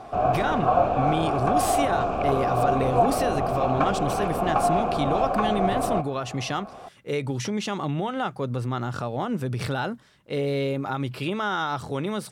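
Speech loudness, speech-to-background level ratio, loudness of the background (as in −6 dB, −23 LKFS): −28.5 LKFS, −4.0 dB, −24.5 LKFS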